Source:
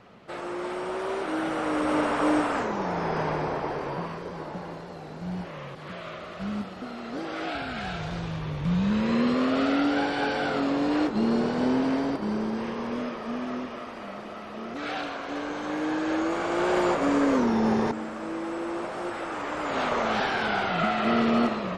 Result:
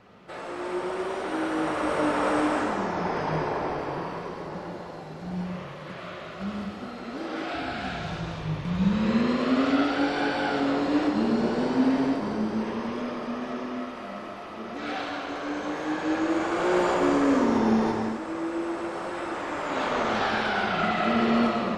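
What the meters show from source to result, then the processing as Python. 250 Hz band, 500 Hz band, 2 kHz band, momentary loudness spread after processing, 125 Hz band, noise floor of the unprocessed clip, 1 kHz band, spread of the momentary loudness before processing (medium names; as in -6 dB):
+0.5 dB, +0.5 dB, +0.5 dB, 14 LU, 0.0 dB, -40 dBFS, +0.5 dB, 14 LU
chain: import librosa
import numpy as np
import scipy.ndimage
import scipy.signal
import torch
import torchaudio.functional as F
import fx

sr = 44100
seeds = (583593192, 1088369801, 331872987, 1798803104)

y = fx.rev_gated(x, sr, seeds[0], gate_ms=290, shape='flat', drr_db=0.0)
y = y * librosa.db_to_amplitude(-2.5)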